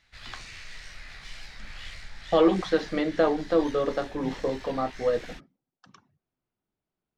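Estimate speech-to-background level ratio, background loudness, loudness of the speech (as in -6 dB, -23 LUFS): 17.0 dB, -43.5 LUFS, -26.5 LUFS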